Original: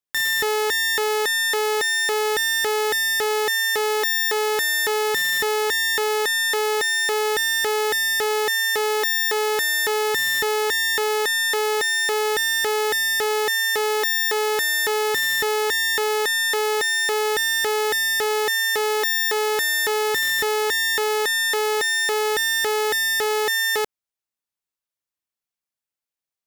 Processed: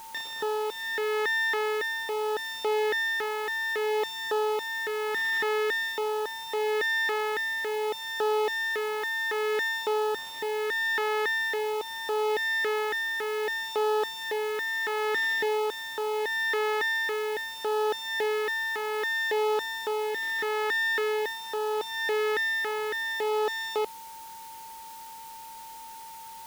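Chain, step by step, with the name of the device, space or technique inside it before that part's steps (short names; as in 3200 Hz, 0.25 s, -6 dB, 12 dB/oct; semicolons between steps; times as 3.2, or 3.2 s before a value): shortwave radio (BPF 250–2600 Hz; tremolo 0.72 Hz, depth 40%; LFO notch sine 0.52 Hz 560–2100 Hz; whine 900 Hz -40 dBFS; white noise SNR 20 dB); gain -2 dB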